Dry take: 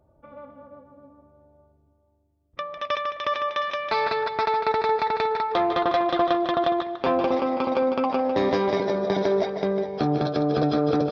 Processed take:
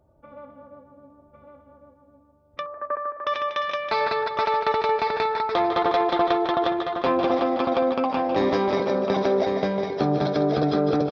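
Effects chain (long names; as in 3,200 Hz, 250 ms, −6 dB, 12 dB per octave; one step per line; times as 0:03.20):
0:02.66–0:03.27: Chebyshev band-pass filter 240–1,600 Hz, order 4
on a send: single-tap delay 1,104 ms −6 dB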